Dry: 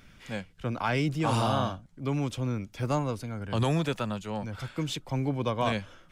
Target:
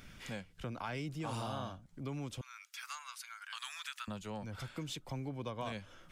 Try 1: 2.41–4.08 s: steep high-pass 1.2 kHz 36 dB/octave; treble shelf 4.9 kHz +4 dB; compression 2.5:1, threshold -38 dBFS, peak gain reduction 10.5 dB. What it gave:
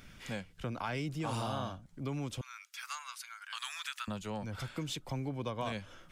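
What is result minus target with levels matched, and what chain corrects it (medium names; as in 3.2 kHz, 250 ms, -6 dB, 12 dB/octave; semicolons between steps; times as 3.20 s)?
compression: peak gain reduction -3.5 dB
2.41–4.08 s: steep high-pass 1.2 kHz 36 dB/octave; treble shelf 4.9 kHz +4 dB; compression 2.5:1, threshold -44 dBFS, peak gain reduction 14 dB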